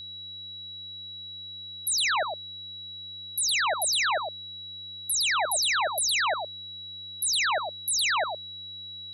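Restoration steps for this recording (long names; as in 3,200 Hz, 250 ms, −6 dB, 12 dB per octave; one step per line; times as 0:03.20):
hum removal 98.2 Hz, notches 7
notch filter 3,900 Hz, Q 30
echo removal 111 ms −6.5 dB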